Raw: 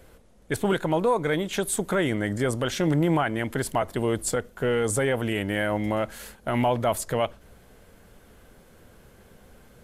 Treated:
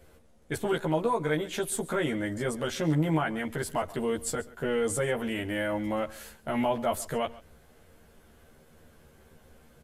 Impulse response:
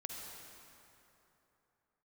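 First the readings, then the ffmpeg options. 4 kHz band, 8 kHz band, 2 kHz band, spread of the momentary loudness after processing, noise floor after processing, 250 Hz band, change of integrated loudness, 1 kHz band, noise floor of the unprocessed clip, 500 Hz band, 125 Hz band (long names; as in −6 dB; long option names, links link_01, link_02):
−4.5 dB, −4.5 dB, −4.5 dB, 6 LU, −58 dBFS, −4.0 dB, −4.0 dB, −4.5 dB, −54 dBFS, −4.0 dB, −5.0 dB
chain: -filter_complex "[0:a]asplit=2[link_01][link_02];[link_02]adelay=13,volume=-2dB[link_03];[link_01][link_03]amix=inputs=2:normalize=0,aecho=1:1:136:0.1,volume=-6.5dB"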